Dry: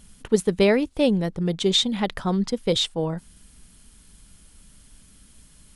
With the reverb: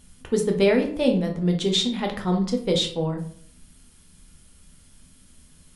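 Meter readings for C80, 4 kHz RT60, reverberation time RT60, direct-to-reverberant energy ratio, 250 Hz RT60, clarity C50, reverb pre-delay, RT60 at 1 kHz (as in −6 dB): 13.5 dB, 0.35 s, 0.55 s, 2.5 dB, 0.70 s, 9.0 dB, 7 ms, 0.50 s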